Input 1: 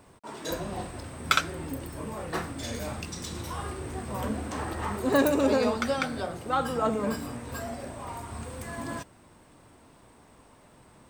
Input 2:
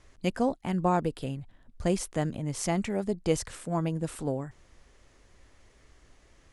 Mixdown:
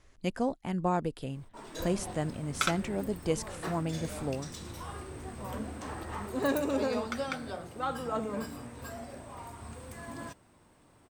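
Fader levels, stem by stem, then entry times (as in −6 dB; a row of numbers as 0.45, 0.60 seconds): −6.5, −3.5 decibels; 1.30, 0.00 seconds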